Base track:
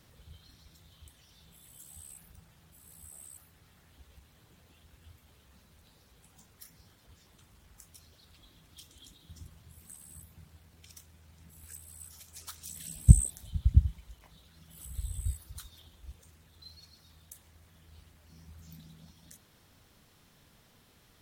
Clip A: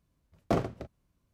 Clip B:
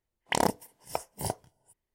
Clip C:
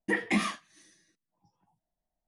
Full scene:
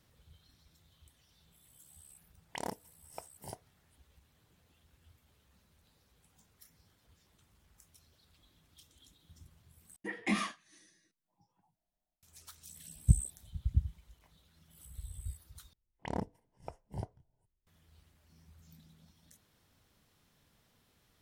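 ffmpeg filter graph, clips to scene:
-filter_complex "[2:a]asplit=2[a][b];[0:a]volume=-8dB[c];[3:a]dynaudnorm=f=190:g=3:m=11dB[d];[b]aemphasis=mode=reproduction:type=riaa[e];[c]asplit=3[f][g][h];[f]atrim=end=9.964[i];[d]atrim=end=2.27,asetpts=PTS-STARTPTS,volume=-14dB[j];[g]atrim=start=12.226:end=15.734[k];[e]atrim=end=1.94,asetpts=PTS-STARTPTS,volume=-14.5dB[l];[h]atrim=start=17.666[m];[a]atrim=end=1.94,asetpts=PTS-STARTPTS,volume=-14dB,afade=t=in:d=0.004:c=hsin,afade=t=out:st=1.936:d=0.004:c=hsin,adelay=2230[n];[i][j]acrossfade=d=0.004:c1=hsin:c2=hsin[o];[o][k]acrossfade=d=0.004:c1=hsin:c2=hsin[p];[p][l]acrossfade=d=0.004:c1=hsin:c2=hsin[q];[q][m]acrossfade=d=0.004:c1=hsin:c2=hsin[r];[r][n]amix=inputs=2:normalize=0"

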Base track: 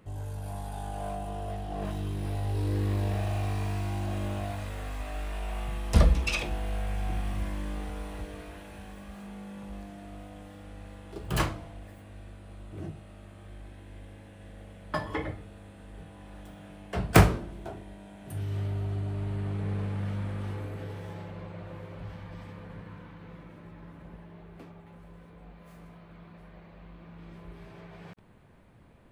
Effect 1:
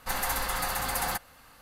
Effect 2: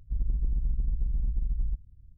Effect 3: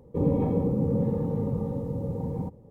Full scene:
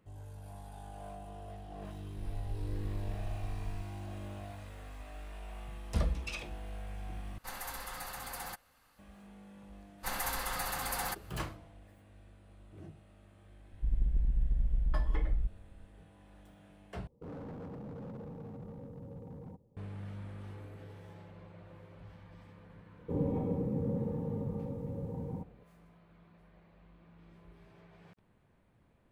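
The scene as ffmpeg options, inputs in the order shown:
-filter_complex "[2:a]asplit=2[a][b];[1:a]asplit=2[c][d];[3:a]asplit=2[e][f];[0:a]volume=-11dB[g];[a]aecho=1:1:7.1:0.65[h];[e]volume=26.5dB,asoftclip=hard,volume=-26.5dB[i];[g]asplit=3[j][k][l];[j]atrim=end=7.384[m];[c]atrim=end=1.61,asetpts=PTS-STARTPTS,volume=-12.5dB[n];[k]atrim=start=8.986:end=17.074[o];[i]atrim=end=2.7,asetpts=PTS-STARTPTS,volume=-15.5dB[p];[l]atrim=start=19.766[q];[h]atrim=end=2.17,asetpts=PTS-STARTPTS,volume=-13.5dB,afade=t=in:d=0.004:c=hsin,afade=t=out:st=2.166:d=0.004:c=hsin,adelay=2070[r];[d]atrim=end=1.61,asetpts=PTS-STARTPTS,volume=-6dB,afade=t=in:d=0.1,afade=t=out:st=1.51:d=0.1,adelay=9970[s];[b]atrim=end=2.17,asetpts=PTS-STARTPTS,volume=-2dB,afade=t=in:d=0.004:c=hsin,afade=t=out:st=2.166:d=0.004:c=hsin,adelay=13720[t];[f]atrim=end=2.7,asetpts=PTS-STARTPTS,volume=-8.5dB,afade=t=in:d=0.004:c=hsin,afade=t=out:st=2.696:d=0.004:c=hsin,adelay=22940[u];[m][n]acrossfade=d=0.004:c1=hsin:c2=hsin[v];[v][o]acrossfade=d=0.004:c1=hsin:c2=hsin[w];[w][p]acrossfade=d=0.004:c1=hsin:c2=hsin[x];[x][q]acrossfade=d=0.004:c1=hsin:c2=hsin[y];[y][r][s][t][u]amix=inputs=5:normalize=0"

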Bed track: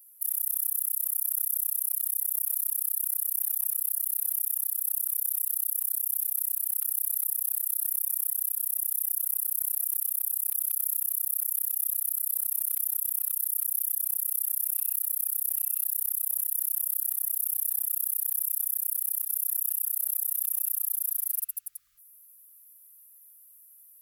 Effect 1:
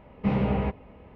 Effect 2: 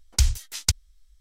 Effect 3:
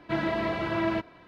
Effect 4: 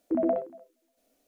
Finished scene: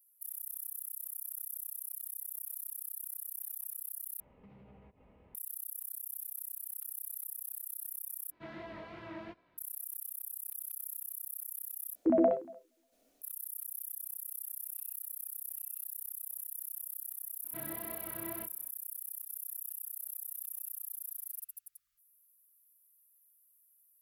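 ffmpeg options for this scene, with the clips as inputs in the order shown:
-filter_complex "[3:a]asplit=2[a][b];[0:a]volume=-13.5dB[c];[1:a]acompressor=threshold=-43dB:ratio=6:attack=3.2:release=140:knee=1:detection=peak[d];[a]flanger=delay=16:depth=7.3:speed=2.7[e];[b]flanger=delay=22.5:depth=5:speed=1.9[f];[c]asplit=4[g][h][i][j];[g]atrim=end=4.204[k];[d]atrim=end=1.15,asetpts=PTS-STARTPTS,volume=-13dB[l];[h]atrim=start=5.346:end=8.314[m];[e]atrim=end=1.27,asetpts=PTS-STARTPTS,volume=-15dB[n];[i]atrim=start=9.576:end=11.954[o];[4:a]atrim=end=1.27[p];[j]atrim=start=13.216[q];[f]atrim=end=1.27,asetpts=PTS-STARTPTS,volume=-15dB,afade=t=in:d=0.004:c=hsin,afade=t=out:st=1.266:d=0.004:c=hsin,adelay=17440[r];[k][l]acrossfade=d=0.004:c1=hsin:c2=hsin[s];[s][m]acrossfade=d=0.004:c1=hsin:c2=hsin[t];[t][n]acrossfade=d=0.004:c1=hsin:c2=hsin[u];[u][o]acrossfade=d=0.004:c1=hsin:c2=hsin[v];[v][p]acrossfade=d=0.004:c1=hsin:c2=hsin[w];[w][q]acrossfade=d=0.004:c1=hsin:c2=hsin[x];[x][r]amix=inputs=2:normalize=0"

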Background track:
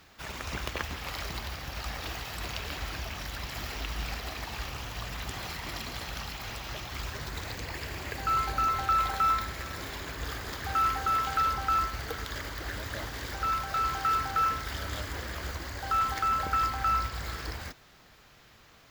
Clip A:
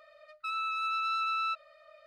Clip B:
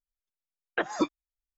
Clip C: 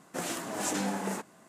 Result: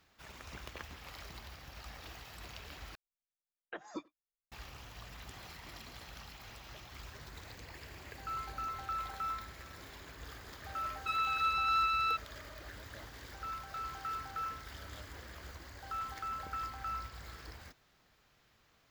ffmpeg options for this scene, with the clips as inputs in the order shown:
-filter_complex "[0:a]volume=-12.5dB[a];[2:a]asplit=2[b][c];[c]adelay=90,highpass=300,lowpass=3.4k,asoftclip=type=hard:threshold=-22.5dB,volume=-23dB[d];[b][d]amix=inputs=2:normalize=0[e];[a]asplit=2[f][g];[f]atrim=end=2.954[h];[e]atrim=end=1.57,asetpts=PTS-STARTPTS,volume=-16.5dB[i];[g]atrim=start=4.516[j];[1:a]atrim=end=2.06,asetpts=PTS-STARTPTS,volume=-0.5dB,afade=t=in:d=0.004:c=hsin,afade=t=out:st=2.056:d=0.004:c=hsin,adelay=10620[k];[h][i]acrossfade=d=0.004:c1=hsin:c2=hsin[l];[l][j]acrossfade=d=0.004:c1=hsin:c2=hsin[m];[m][k]amix=inputs=2:normalize=0"

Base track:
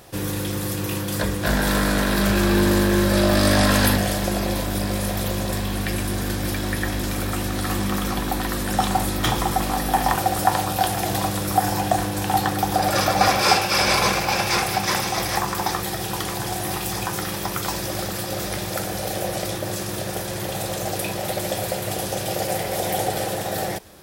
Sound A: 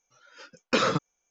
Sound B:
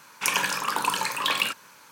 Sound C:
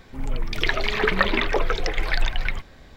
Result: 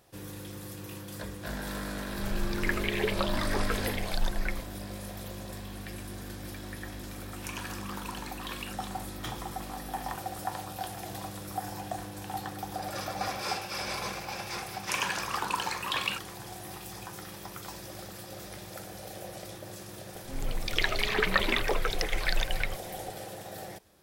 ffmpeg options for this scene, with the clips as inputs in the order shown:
-filter_complex "[3:a]asplit=2[a][b];[2:a]asplit=2[c][d];[0:a]volume=-16dB[e];[a]asplit=2[f][g];[g]afreqshift=1.1[h];[f][h]amix=inputs=2:normalize=1[i];[d]adynamicsmooth=sensitivity=7.5:basefreq=6.7k[j];[b]highshelf=f=3.4k:g=8.5[k];[i]atrim=end=2.96,asetpts=PTS-STARTPTS,volume=-6dB,afade=t=in:d=0.004:c=hsin,afade=t=out:st=2.956:d=0.004:c=hsin,adelay=2000[l];[c]atrim=end=1.91,asetpts=PTS-STARTPTS,volume=-16.5dB,afade=t=in:d=0.004:c=hsin,afade=t=out:st=1.906:d=0.004:c=hsin,adelay=7210[m];[j]atrim=end=1.91,asetpts=PTS-STARTPTS,volume=-6dB,afade=t=in:d=0.004:c=hsin,afade=t=out:st=1.906:d=0.004:c=hsin,adelay=14660[n];[k]atrim=end=2.96,asetpts=PTS-STARTPTS,volume=-7dB,afade=t=in:d=0.004:c=hsin,afade=t=out:st=2.956:d=0.004:c=hsin,adelay=20150[o];[e][l][m][n][o]amix=inputs=5:normalize=0"

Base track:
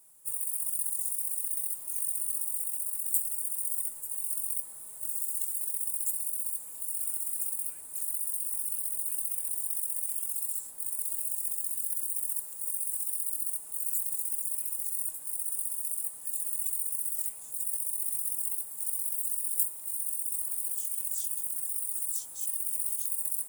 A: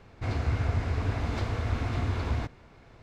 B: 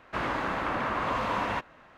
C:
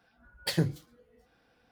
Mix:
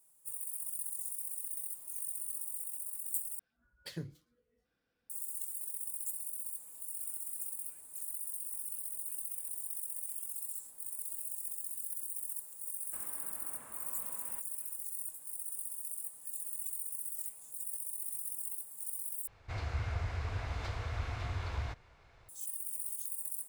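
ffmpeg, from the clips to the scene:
-filter_complex "[0:a]volume=-8dB[a];[3:a]equalizer=f=790:t=o:w=0.53:g=-8[b];[2:a]acompressor=threshold=-35dB:ratio=6:attack=3.2:release=140:knee=1:detection=peak[c];[1:a]equalizer=f=240:w=0.84:g=-14[d];[a]asplit=3[e][f][g];[e]atrim=end=3.394[h];[b]atrim=end=1.71,asetpts=PTS-STARTPTS,volume=-14.5dB[i];[f]atrim=start=5.096:end=19.274[j];[d]atrim=end=3.02,asetpts=PTS-STARTPTS,volume=-5dB[k];[g]atrim=start=22.286[l];[c]atrim=end=1.97,asetpts=PTS-STARTPTS,volume=-17.5dB,afade=t=in:d=0.004:c=hsin,afade=t=out:st=1.966:d=0.004:c=hsin,adelay=12800[m];[h][i]acrossfade=d=0.004:c1=hsin:c2=hsin[n];[n][j]acrossfade=d=0.004:c1=hsin:c2=hsin[o];[o][k]acrossfade=d=0.004:c1=hsin:c2=hsin[p];[p][l]acrossfade=d=0.004:c1=hsin:c2=hsin[q];[q][m]amix=inputs=2:normalize=0"

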